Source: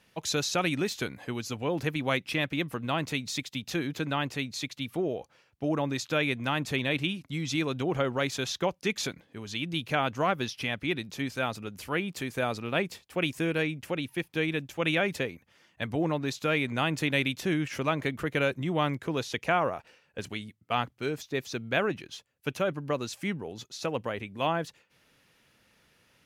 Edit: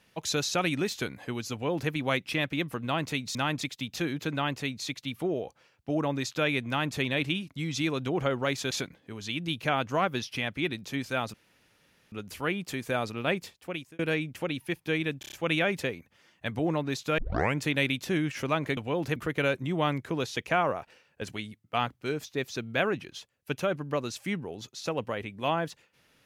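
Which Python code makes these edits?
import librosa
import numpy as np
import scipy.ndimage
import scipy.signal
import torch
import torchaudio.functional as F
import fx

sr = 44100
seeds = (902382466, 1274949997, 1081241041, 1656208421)

y = fx.edit(x, sr, fx.duplicate(start_s=1.52, length_s=0.39, to_s=18.13),
    fx.duplicate(start_s=6.42, length_s=0.26, to_s=3.35),
    fx.cut(start_s=8.45, length_s=0.52),
    fx.insert_room_tone(at_s=11.6, length_s=0.78),
    fx.fade_out_span(start_s=12.9, length_s=0.57),
    fx.stutter(start_s=14.68, slice_s=0.03, count=5),
    fx.tape_start(start_s=16.54, length_s=0.4), tone=tone)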